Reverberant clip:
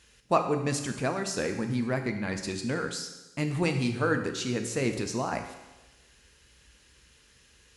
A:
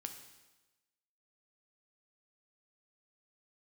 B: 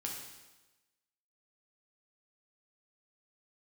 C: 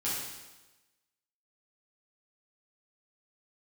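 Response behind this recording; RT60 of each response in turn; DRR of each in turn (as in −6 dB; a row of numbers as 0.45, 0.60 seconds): A; 1.1, 1.1, 1.1 seconds; 5.0, −1.5, −9.5 decibels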